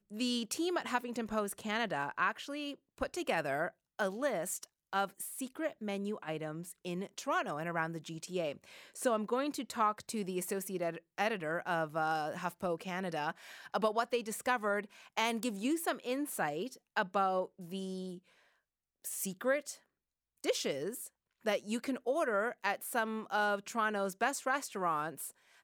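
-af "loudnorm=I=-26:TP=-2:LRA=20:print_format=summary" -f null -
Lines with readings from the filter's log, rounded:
Input Integrated:    -36.0 LUFS
Input True Peak:     -16.4 dBTP
Input LRA:             3.1 LU
Input Threshold:     -46.1 LUFS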